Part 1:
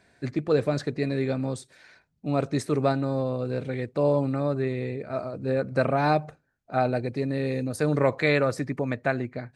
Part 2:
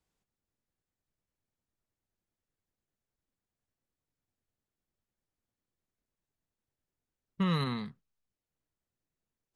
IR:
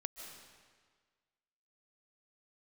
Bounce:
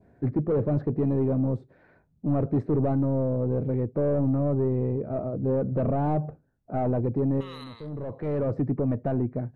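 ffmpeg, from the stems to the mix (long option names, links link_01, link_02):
-filter_complex "[0:a]asoftclip=type=tanh:threshold=-25.5dB,lowpass=1500,tiltshelf=frequency=920:gain=8.5,volume=0dB[link_01];[1:a]highpass=670,volume=-6.5dB,asplit=3[link_02][link_03][link_04];[link_03]volume=-20.5dB[link_05];[link_04]apad=whole_len=421517[link_06];[link_01][link_06]sidechaincompress=threshold=-56dB:ratio=8:attack=16:release=686[link_07];[2:a]atrim=start_sample=2205[link_08];[link_05][link_08]afir=irnorm=-1:irlink=0[link_09];[link_07][link_02][link_09]amix=inputs=3:normalize=0,adynamicequalizer=threshold=0.00282:dfrequency=1700:dqfactor=1.5:tfrequency=1700:tqfactor=1.5:attack=5:release=100:ratio=0.375:range=2.5:mode=cutabove:tftype=bell"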